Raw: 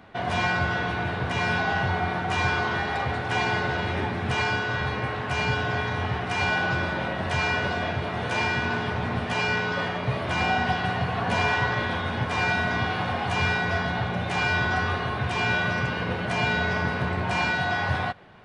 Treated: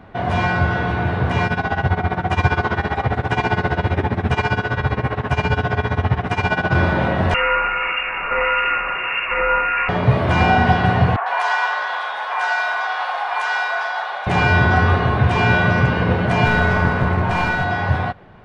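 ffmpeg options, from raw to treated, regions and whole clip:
ffmpeg -i in.wav -filter_complex "[0:a]asettb=1/sr,asplit=3[link_01][link_02][link_03];[link_01]atrim=end=1.464[link_04];[link_02]atrim=start=1.46:end=6.75,asetpts=PTS-STARTPTS,afade=type=in:duration=0.004:curve=qsin,afade=type=out:start_time=5.286:duration=0.004:curve=qsin,bandreject=frequency=4400:width=26,tremolo=f=15:d=0.84[link_05];[link_03]atrim=start=6.746[link_06];[link_04][link_05]acrossfade=duration=0.004:curve1=hsin:curve2=qsin[link_07];[link_07][link_06]acrossfade=duration=0.004:curve1=qsin:curve2=hsin,asettb=1/sr,asplit=3[link_08][link_09][link_10];[link_08]atrim=end=7.344[link_11];[link_09]atrim=start=7.34:end=9.89,asetpts=PTS-STARTPTS,afade=type=in:duration=0.004:curve=qsin,afade=type=out:start_time=2.546:duration=0.004:curve=qsin,equalizer=frequency=1600:width=3:gain=7,acrossover=split=1500[link_12][link_13];[link_12]aeval=exprs='val(0)*(1-0.5/2+0.5/2*cos(2*PI*1.6*n/s))':channel_layout=same[link_14];[link_13]aeval=exprs='val(0)*(1-0.5/2-0.5/2*cos(2*PI*1.6*n/s))':channel_layout=same[link_15];[link_14][link_15]amix=inputs=2:normalize=0,lowpass=frequency=2500:width_type=q:width=0.5098,lowpass=frequency=2500:width_type=q:width=0.6013,lowpass=frequency=2500:width_type=q:width=0.9,lowpass=frequency=2500:width_type=q:width=2.563,afreqshift=-2900[link_16];[link_10]atrim=start=9.886[link_17];[link_11][link_16]acrossfade=duration=0.004:curve1=hsin:curve2=qsin[link_18];[link_18][link_17]acrossfade=duration=0.004:curve1=qsin:curve2=hsin,asettb=1/sr,asplit=3[link_19][link_20][link_21];[link_19]atrim=end=11.164[link_22];[link_20]atrim=start=11.16:end=14.27,asetpts=PTS-STARTPTS,afade=type=in:duration=0.004:curve=qsin,afade=type=out:start_time=3.106:duration=0.004:curve=qsin,highpass=frequency=770:width=0.5412,highpass=frequency=770:width=1.3066,acrossover=split=2300[link_23][link_24];[link_24]adelay=100[link_25];[link_23][link_25]amix=inputs=2:normalize=0,atrim=end_sample=137151[link_26];[link_21]atrim=start=14.266[link_27];[link_22][link_26]acrossfade=duration=0.004:curve1=hsin:curve2=qsin[link_28];[link_28][link_27]acrossfade=duration=0.004:curve1=qsin:curve2=hsin,asettb=1/sr,asplit=3[link_29][link_30][link_31];[link_29]atrim=end=16.454[link_32];[link_30]atrim=start=16.45:end=17.64,asetpts=PTS-STARTPTS,afade=type=in:duration=0.004:curve=qsin,afade=type=out:start_time=1.186:duration=0.004:curve=qsin,aeval=exprs='clip(val(0),-1,0.0596)':channel_layout=same,equalizer=frequency=1200:width=1.2:gain=3.5[link_33];[link_31]atrim=start=17.636[link_34];[link_32][link_33]acrossfade=duration=0.004:curve1=hsin:curve2=qsin[link_35];[link_35][link_34]acrossfade=duration=0.004:curve1=qsin:curve2=hsin,highshelf=frequency=2400:gain=-11,dynaudnorm=framelen=110:gausssize=31:maxgain=3.5dB,lowshelf=frequency=76:gain=8.5,volume=7dB" out.wav

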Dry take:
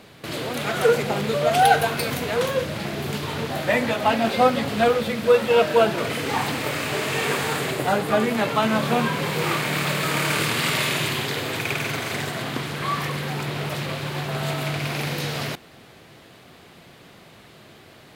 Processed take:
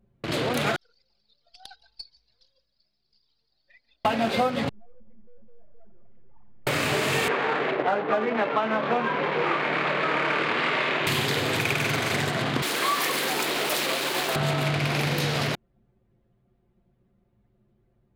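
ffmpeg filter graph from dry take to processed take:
ffmpeg -i in.wav -filter_complex "[0:a]asettb=1/sr,asplit=3[link_01][link_02][link_03];[link_01]atrim=end=0.764[link_04];[link_02]atrim=start=0.76:end=4.05,asetpts=PTS-STARTPTS,afade=type=in:duration=0.004:curve=qsin,afade=type=out:start_time=3.286:duration=0.004:curve=qsin,bandpass=frequency=5000:width_type=q:width=3.8,aeval=exprs='(tanh(14.1*val(0)+0.35)-tanh(0.35))/14.1':channel_layout=same,asplit=8[link_05][link_06][link_07][link_08][link_09][link_10][link_11][link_12];[link_06]adelay=144,afreqshift=51,volume=-10dB[link_13];[link_07]adelay=288,afreqshift=102,volume=-14.3dB[link_14];[link_08]adelay=432,afreqshift=153,volume=-18.6dB[link_15];[link_09]adelay=576,afreqshift=204,volume=-22.9dB[link_16];[link_10]adelay=720,afreqshift=255,volume=-27.2dB[link_17];[link_11]adelay=864,afreqshift=306,volume=-31.5dB[link_18];[link_12]adelay=1008,afreqshift=357,volume=-35.8dB[link_19];[link_05][link_13][link_14][link_15][link_16][link_17][link_18][link_19]amix=inputs=8:normalize=0,atrim=end_sample=145089[link_20];[link_03]atrim=start=4.046[link_21];[link_04][link_20]acrossfade=duration=0.004:curve1=hsin:curve2=qsin[link_22];[link_22][link_21]acrossfade=duration=0.004:curve1=qsin:curve2=hsin,asettb=1/sr,asplit=3[link_23][link_24][link_25];[link_23]atrim=end=4.694[link_26];[link_24]atrim=start=4.69:end=6.67,asetpts=PTS-STARTPTS,afade=type=in:duration=0.004:curve=qsin,afade=type=out:start_time=1.976:duration=0.004:curve=qsin,lowpass=2300,aeval=exprs='max(val(0),0)':channel_layout=same,aeval=exprs='(tanh(31.6*val(0)+0.7)-tanh(0.7))/31.6':channel_layout=same[link_27];[link_25]atrim=start=6.666[link_28];[link_26][link_27]acrossfade=duration=0.004:curve1=hsin:curve2=qsin[link_29];[link_29][link_28]acrossfade=duration=0.004:curve1=qsin:curve2=hsin,asettb=1/sr,asplit=3[link_30][link_31][link_32];[link_30]atrim=end=7.284[link_33];[link_31]atrim=start=7.28:end=11.07,asetpts=PTS-STARTPTS,afade=type=in:duration=0.004:curve=qsin,afade=type=out:start_time=3.786:duration=0.004:curve=qsin,acrusher=bits=3:mode=log:mix=0:aa=0.000001,highpass=320,lowpass=2300[link_34];[link_32]atrim=start=11.066[link_35];[link_33][link_34]acrossfade=duration=0.004:curve1=hsin:curve2=qsin[link_36];[link_36][link_35]acrossfade=duration=0.004:curve1=qsin:curve2=hsin,asettb=1/sr,asplit=3[link_37][link_38][link_39];[link_37]atrim=end=12.624[link_40];[link_38]atrim=start=12.62:end=14.36,asetpts=PTS-STARTPTS,afade=type=in:duration=0.004:curve=qsin,afade=type=out:start_time=1.736:duration=0.004:curve=qsin,highpass=frequency=260:width=0.5412,highpass=frequency=260:width=1.3066,highshelf=frequency=4400:gain=9.5,acrusher=bits=5:mix=0:aa=0.5[link_41];[link_39]atrim=start=14.356[link_42];[link_40][link_41]acrossfade=duration=0.004:curve1=hsin:curve2=qsin[link_43];[link_43][link_42]acrossfade=duration=0.004:curve1=qsin:curve2=hsin,anlmdn=25.1,acompressor=threshold=-24dB:ratio=6,volume=3.5dB" out.wav

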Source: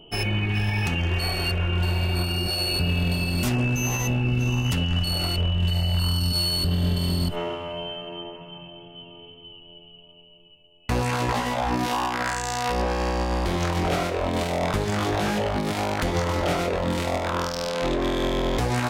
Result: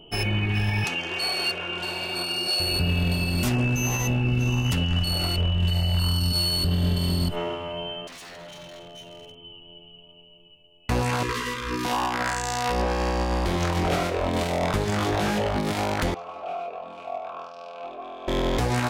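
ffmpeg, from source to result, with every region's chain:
ffmpeg -i in.wav -filter_complex "[0:a]asettb=1/sr,asplit=3[link_01][link_02][link_03];[link_01]atrim=end=0.844[link_04];[link_02]atrim=start=0.84:end=2.6,asetpts=PTS-STARTPTS,afade=type=in:duration=0.004:curve=qsin,afade=type=out:start_time=1.756:duration=0.004:curve=qsin,highpass=330,lowpass=6100,aemphasis=mode=production:type=50fm,bandreject=frequency=1900:width=13[link_05];[link_03]atrim=start=2.596[link_06];[link_04][link_05]acrossfade=duration=0.004:curve1=hsin:curve2=qsin[link_07];[link_07][link_06]acrossfade=duration=0.004:curve1=qsin:curve2=hsin,asettb=1/sr,asplit=3[link_08][link_09][link_10];[link_08]atrim=end=8.074[link_11];[link_09]atrim=start=8.07:end=9.35,asetpts=PTS-STARTPTS,afade=type=in:duration=0.004:curve=qsin,afade=type=out:start_time=1.276:duration=0.004:curve=qsin,equalizer=frequency=560:width=2.9:gain=8.5,aeval=exprs='0.0126*(abs(mod(val(0)/0.0126+3,4)-2)-1)':channel_layout=same,asplit=2[link_12][link_13];[link_13]adelay=48,volume=-10.5dB[link_14];[link_12][link_14]amix=inputs=2:normalize=0,atrim=end_sample=56448[link_15];[link_10]atrim=start=9.346[link_16];[link_11][link_15]acrossfade=duration=0.004:curve1=hsin:curve2=qsin[link_17];[link_17][link_16]acrossfade=duration=0.004:curve1=qsin:curve2=hsin,asettb=1/sr,asplit=3[link_18][link_19][link_20];[link_18]atrim=end=11.234[link_21];[link_19]atrim=start=11.23:end=11.85,asetpts=PTS-STARTPTS,afade=type=in:duration=0.004:curve=qsin,afade=type=out:start_time=0.616:duration=0.004:curve=qsin,asuperstop=centerf=710:order=20:qfactor=1.6,lowshelf=frequency=290:gain=-6.5,aecho=1:1:2.5:0.35,atrim=end_sample=27342[link_22];[link_20]atrim=start=11.846[link_23];[link_21][link_22]acrossfade=duration=0.004:curve1=hsin:curve2=qsin[link_24];[link_24][link_23]acrossfade=duration=0.004:curve1=qsin:curve2=hsin,asettb=1/sr,asplit=3[link_25][link_26][link_27];[link_25]atrim=end=16.144[link_28];[link_26]atrim=start=16.14:end=18.28,asetpts=PTS-STARTPTS,afade=type=in:duration=0.004:curve=qsin,afade=type=out:start_time=2.136:duration=0.004:curve=qsin,asplit=3[link_29][link_30][link_31];[link_29]bandpass=frequency=730:width_type=q:width=8,volume=0dB[link_32];[link_30]bandpass=frequency=1090:width_type=q:width=8,volume=-6dB[link_33];[link_31]bandpass=frequency=2440:width_type=q:width=8,volume=-9dB[link_34];[link_32][link_33][link_34]amix=inputs=3:normalize=0,equalizer=frequency=550:width=7.7:gain=-5,aecho=1:1:4.5:0.34,atrim=end_sample=94374[link_35];[link_27]atrim=start=18.276[link_36];[link_28][link_35]acrossfade=duration=0.004:curve1=hsin:curve2=qsin[link_37];[link_37][link_36]acrossfade=duration=0.004:curve1=qsin:curve2=hsin" out.wav

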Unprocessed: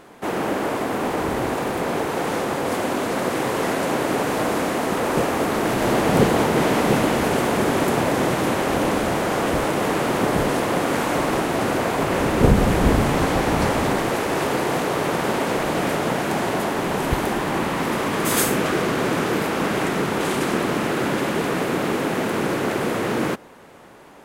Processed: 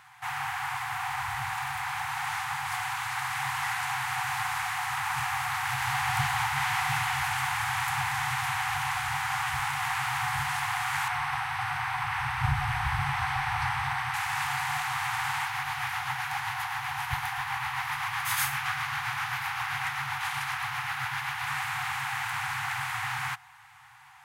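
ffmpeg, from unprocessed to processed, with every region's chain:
ffmpeg -i in.wav -filter_complex "[0:a]asettb=1/sr,asplit=3[link_01][link_02][link_03];[link_01]atrim=end=11.084[link_04];[link_02]atrim=start=11.08:end=14.14,asetpts=PTS-STARTPTS,afade=type=in:duration=0.004:curve=qsin,afade=type=out:start_time=3.056:duration=0.004:curve=qsin,highshelf=frequency=4700:gain=-9.5,bandreject=frequency=7000:width=6.2[link_05];[link_03]atrim=start=14.136[link_06];[link_04][link_05]acrossfade=duration=0.004:curve1=hsin:curve2=qsin[link_07];[link_07][link_06]acrossfade=duration=0.004:curve1=qsin:curve2=hsin,asettb=1/sr,asplit=3[link_08][link_09][link_10];[link_08]atrim=end=15.454[link_11];[link_09]atrim=start=15.45:end=21.47,asetpts=PTS-STARTPTS,afade=type=in:duration=0.004:curve=qsin,afade=type=out:start_time=6.016:duration=0.004:curve=qsin,equalizer=frequency=7900:width_type=o:width=0.44:gain=-6,tremolo=f=7.7:d=0.34[link_12];[link_10]atrim=start=21.466[link_13];[link_11][link_12]acrossfade=duration=0.004:curve1=hsin:curve2=qsin[link_14];[link_14][link_13]acrossfade=duration=0.004:curve1=qsin:curve2=hsin,afftfilt=real='re*(1-between(b*sr/4096,140,730))':imag='im*(1-between(b*sr/4096,140,730))':win_size=4096:overlap=0.75,highpass=93,equalizer=frequency=2000:width_type=o:width=0.91:gain=5,volume=-5.5dB" out.wav

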